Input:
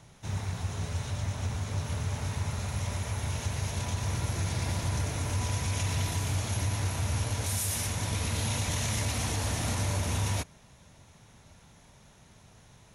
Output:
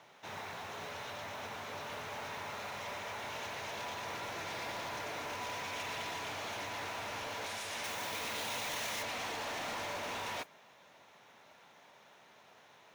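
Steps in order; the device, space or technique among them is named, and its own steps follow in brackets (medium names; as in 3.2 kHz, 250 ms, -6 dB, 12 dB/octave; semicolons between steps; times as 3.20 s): carbon microphone (band-pass 480–3400 Hz; saturation -37.5 dBFS, distortion -13 dB; modulation noise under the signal 19 dB); 7.84–9.03 s: treble shelf 8.5 kHz +11.5 dB; trim +2.5 dB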